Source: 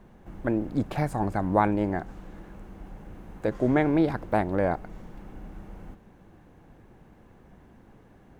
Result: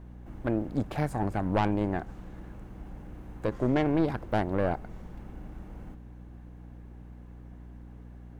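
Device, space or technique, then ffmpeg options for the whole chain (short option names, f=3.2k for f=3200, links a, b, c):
valve amplifier with mains hum: -af "aeval=exprs='(tanh(7.94*val(0)+0.55)-tanh(0.55))/7.94':c=same,aeval=exprs='val(0)+0.00562*(sin(2*PI*60*n/s)+sin(2*PI*2*60*n/s)/2+sin(2*PI*3*60*n/s)/3+sin(2*PI*4*60*n/s)/4+sin(2*PI*5*60*n/s)/5)':c=same"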